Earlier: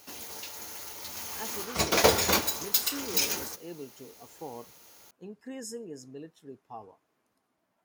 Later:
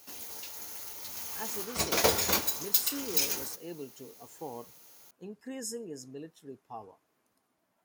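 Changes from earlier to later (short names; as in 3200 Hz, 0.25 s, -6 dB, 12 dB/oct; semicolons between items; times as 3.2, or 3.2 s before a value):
background -5.0 dB; master: add high shelf 6900 Hz +6.5 dB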